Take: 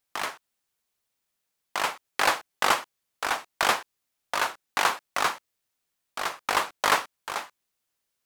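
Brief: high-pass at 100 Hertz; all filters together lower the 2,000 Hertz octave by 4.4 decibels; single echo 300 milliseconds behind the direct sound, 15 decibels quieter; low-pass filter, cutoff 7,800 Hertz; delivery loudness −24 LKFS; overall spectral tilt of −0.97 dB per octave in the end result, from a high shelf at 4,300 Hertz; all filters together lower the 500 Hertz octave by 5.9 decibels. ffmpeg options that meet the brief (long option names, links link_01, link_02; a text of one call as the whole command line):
ffmpeg -i in.wav -af "highpass=100,lowpass=7800,equalizer=frequency=500:width_type=o:gain=-7.5,equalizer=frequency=2000:width_type=o:gain=-4,highshelf=frequency=4300:gain=-6.5,aecho=1:1:300:0.178,volume=7.5dB" out.wav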